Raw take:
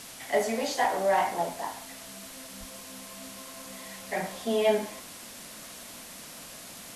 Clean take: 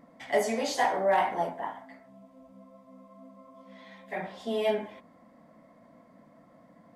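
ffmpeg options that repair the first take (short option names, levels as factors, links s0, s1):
-filter_complex "[0:a]asplit=3[s0][s1][s2];[s0]afade=t=out:st=2.59:d=0.02[s3];[s1]highpass=f=140:w=0.5412,highpass=f=140:w=1.3066,afade=t=in:st=2.59:d=0.02,afade=t=out:st=2.71:d=0.02[s4];[s2]afade=t=in:st=2.71:d=0.02[s5];[s3][s4][s5]amix=inputs=3:normalize=0,afwtdn=0.0071,asetnsamples=n=441:p=0,asendcmd='1.98 volume volume -3.5dB',volume=1"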